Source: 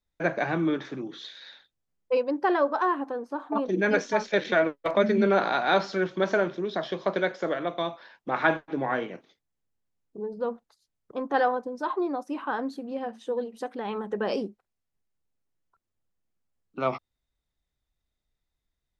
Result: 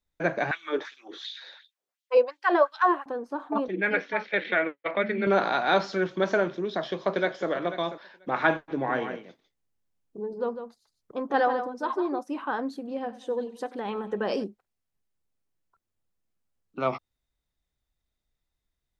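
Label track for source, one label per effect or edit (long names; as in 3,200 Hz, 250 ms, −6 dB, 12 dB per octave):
0.510000	3.060000	auto-filter high-pass sine 2.8 Hz 380–3,700 Hz
3.680000	5.270000	loudspeaker in its box 140–3,400 Hz, peaks and dips at 150 Hz −9 dB, 240 Hz −10 dB, 400 Hz −5 dB, 630 Hz −5 dB, 990 Hz −6 dB, 2,100 Hz +7 dB
6.600000	7.480000	delay throw 490 ms, feedback 10%, level −12.5 dB
8.560000	12.190000	single-tap delay 151 ms −9 dB
12.760000	14.440000	repeating echo 95 ms, feedback 56%, level −18.5 dB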